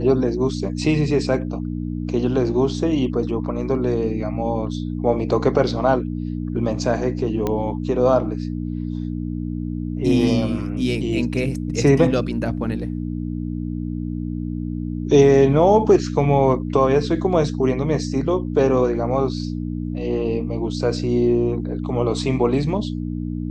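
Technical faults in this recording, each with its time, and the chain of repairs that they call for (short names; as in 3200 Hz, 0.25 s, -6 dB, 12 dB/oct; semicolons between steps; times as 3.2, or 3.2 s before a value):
hum 60 Hz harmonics 5 -26 dBFS
7.47 pop -10 dBFS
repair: de-click; de-hum 60 Hz, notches 5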